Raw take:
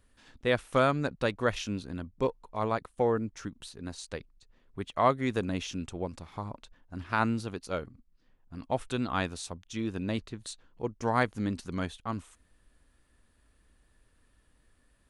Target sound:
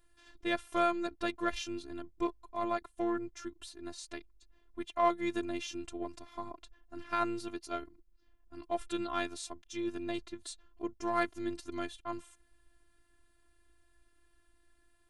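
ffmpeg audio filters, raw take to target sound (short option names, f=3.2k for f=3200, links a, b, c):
-filter_complex "[0:a]asplit=2[a][b];[b]asoftclip=type=tanh:threshold=-26dB,volume=-8.5dB[c];[a][c]amix=inputs=2:normalize=0,afftfilt=real='hypot(re,im)*cos(PI*b)':imag='0':win_size=512:overlap=0.75,volume=-2dB"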